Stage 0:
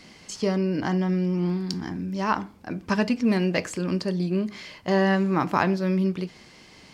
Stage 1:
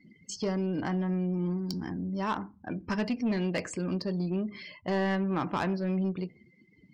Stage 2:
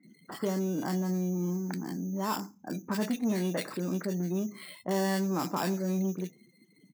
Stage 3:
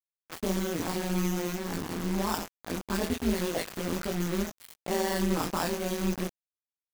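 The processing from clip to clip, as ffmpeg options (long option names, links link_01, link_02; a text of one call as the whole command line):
ffmpeg -i in.wav -filter_complex "[0:a]afftdn=noise_reduction=35:noise_floor=-42,asplit=2[link_01][link_02];[link_02]acompressor=threshold=-32dB:ratio=6,volume=-2.5dB[link_03];[link_01][link_03]amix=inputs=2:normalize=0,asoftclip=type=tanh:threshold=-16.5dB,volume=-6dB" out.wav
ffmpeg -i in.wav -filter_complex "[0:a]acrusher=samples=7:mix=1:aa=0.000001,highpass=frequency=150:width=0.5412,highpass=frequency=150:width=1.3066,acrossover=split=1700[link_01][link_02];[link_02]adelay=30[link_03];[link_01][link_03]amix=inputs=2:normalize=0" out.wav
ffmpeg -i in.wav -af "acrusher=bits=5:mix=0:aa=0.000001,flanger=delay=18:depth=3.1:speed=1.2,tremolo=f=170:d=0.889,volume=7.5dB" out.wav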